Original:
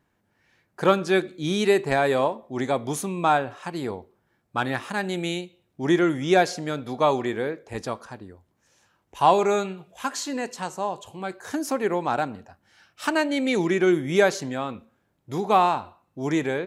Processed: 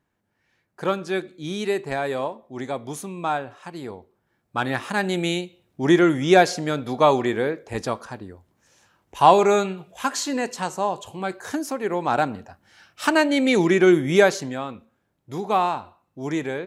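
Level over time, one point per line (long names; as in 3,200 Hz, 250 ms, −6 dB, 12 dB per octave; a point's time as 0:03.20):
0:03.94 −4.5 dB
0:04.98 +4 dB
0:11.44 +4 dB
0:11.76 −3 dB
0:12.21 +4.5 dB
0:14.08 +4.5 dB
0:14.74 −2 dB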